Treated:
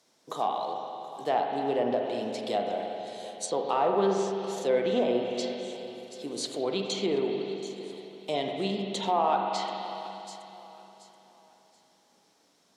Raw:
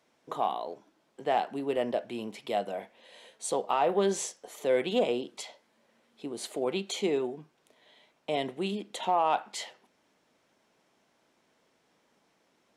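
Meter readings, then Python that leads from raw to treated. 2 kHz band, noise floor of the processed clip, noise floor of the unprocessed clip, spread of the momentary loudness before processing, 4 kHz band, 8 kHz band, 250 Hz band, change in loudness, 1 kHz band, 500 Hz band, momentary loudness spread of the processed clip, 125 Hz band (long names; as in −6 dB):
−0.5 dB, −66 dBFS, −71 dBFS, 15 LU, +3.0 dB, −1.0 dB, +3.0 dB, +1.0 dB, +2.0 dB, +2.5 dB, 15 LU, +3.0 dB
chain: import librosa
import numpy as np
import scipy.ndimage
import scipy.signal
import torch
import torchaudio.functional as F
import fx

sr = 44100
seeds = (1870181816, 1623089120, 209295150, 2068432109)

y = fx.block_float(x, sr, bits=7)
y = scipy.signal.sosfilt(scipy.signal.butter(2, 82.0, 'highpass', fs=sr, output='sos'), y)
y = fx.high_shelf_res(y, sr, hz=3400.0, db=8.0, q=1.5)
y = fx.echo_feedback(y, sr, ms=728, feedback_pct=31, wet_db=-17.5)
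y = fx.rev_spring(y, sr, rt60_s=3.0, pass_ms=(41, 58), chirp_ms=40, drr_db=2.0)
y = fx.env_lowpass_down(y, sr, base_hz=2400.0, full_db=-22.5)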